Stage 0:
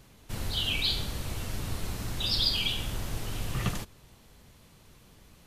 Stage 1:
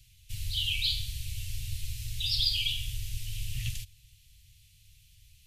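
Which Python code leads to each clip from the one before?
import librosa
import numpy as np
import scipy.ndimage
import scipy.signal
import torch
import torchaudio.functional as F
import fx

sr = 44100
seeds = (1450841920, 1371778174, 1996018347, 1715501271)

y = scipy.signal.sosfilt(scipy.signal.ellip(3, 1.0, 50, [110.0, 2600.0], 'bandstop', fs=sr, output='sos'), x)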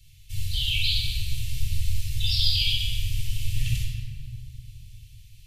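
y = fx.room_shoebox(x, sr, seeds[0], volume_m3=2500.0, walls='mixed', distance_m=4.3)
y = y * 10.0 ** (-1.5 / 20.0)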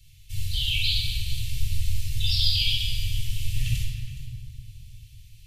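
y = x + 10.0 ** (-15.5 / 20.0) * np.pad(x, (int(418 * sr / 1000.0), 0))[:len(x)]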